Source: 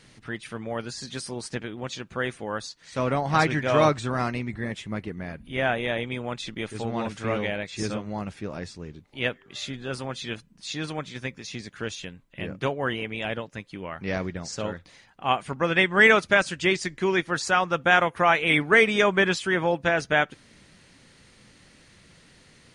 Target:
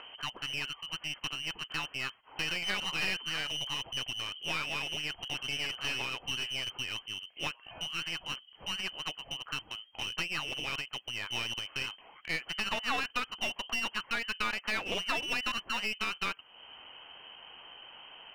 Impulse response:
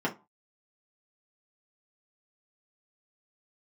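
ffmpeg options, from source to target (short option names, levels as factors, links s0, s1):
-af "lowpass=f=2200:t=q:w=0.5098,lowpass=f=2200:t=q:w=0.6013,lowpass=f=2200:t=q:w=0.9,lowpass=f=2200:t=q:w=2.563,afreqshift=-2600,asetrate=54684,aresample=44100,acompressor=threshold=0.0316:ratio=3,aeval=exprs='clip(val(0),-1,0.0141)':c=same,acompressor=mode=upward:threshold=0.00708:ratio=2.5"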